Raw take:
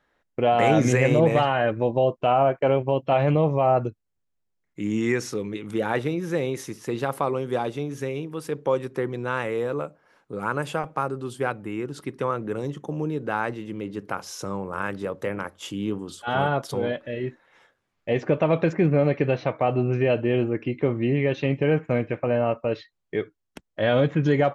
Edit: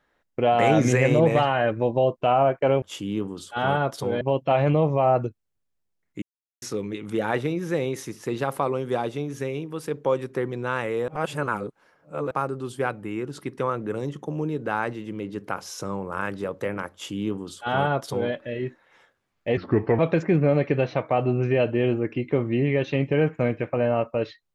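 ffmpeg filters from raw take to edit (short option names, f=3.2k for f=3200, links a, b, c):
-filter_complex "[0:a]asplit=9[a][b][c][d][e][f][g][h][i];[a]atrim=end=2.822[j];[b]atrim=start=15.528:end=16.922[k];[c]atrim=start=2.818:end=4.83,asetpts=PTS-STARTPTS,afade=t=out:st=2.008:d=0.004:c=hsin[l];[d]atrim=start=4.83:end=5.23,asetpts=PTS-STARTPTS,volume=0[m];[e]atrim=start=5.23:end=9.692,asetpts=PTS-STARTPTS,afade=t=in:d=0.004:c=hsin[n];[f]atrim=start=9.688:end=10.922,asetpts=PTS-STARTPTS,areverse[o];[g]atrim=start=10.918:end=18.184[p];[h]atrim=start=18.18:end=18.49,asetpts=PTS-STARTPTS,asetrate=32634,aresample=44100,atrim=end_sample=18474,asetpts=PTS-STARTPTS[q];[i]atrim=start=18.486[r];[j][k]acrossfade=d=0.004:c1=hsin:c2=hsin[s];[l][m][n]concat=n=3:v=0:a=1[t];[s][t]acrossfade=d=0.004:c1=hsin:c2=hsin[u];[u][o]acrossfade=d=0.004:c1=hsin:c2=hsin[v];[v][p]acrossfade=d=0.004:c1=hsin:c2=hsin[w];[w][q]acrossfade=d=0.004:c1=hsin:c2=hsin[x];[x][r]acrossfade=d=0.004:c1=hsin:c2=hsin"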